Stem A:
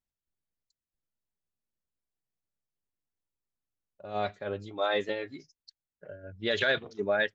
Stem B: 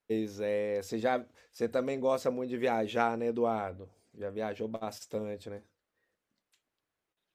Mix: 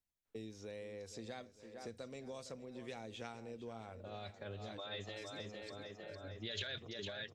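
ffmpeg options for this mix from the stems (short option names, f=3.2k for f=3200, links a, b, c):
-filter_complex "[0:a]alimiter=limit=-23.5dB:level=0:latency=1:release=37,volume=-2.5dB,asplit=3[a][b][c];[b]volume=-5.5dB[d];[1:a]lowpass=f=9.1k:w=0.5412,lowpass=f=9.1k:w=1.3066,adelay=250,volume=-6dB,asplit=2[e][f];[f]volume=-15.5dB[g];[c]apad=whole_len=335074[h];[e][h]sidechaincompress=threshold=-41dB:ratio=8:attack=16:release=139[i];[d][g]amix=inputs=2:normalize=0,aecho=0:1:456|912|1368|1824|2280|2736|3192|3648:1|0.52|0.27|0.141|0.0731|0.038|0.0198|0.0103[j];[a][i][j]amix=inputs=3:normalize=0,acrossover=split=130|3000[k][l][m];[l]acompressor=threshold=-47dB:ratio=6[n];[k][n][m]amix=inputs=3:normalize=0"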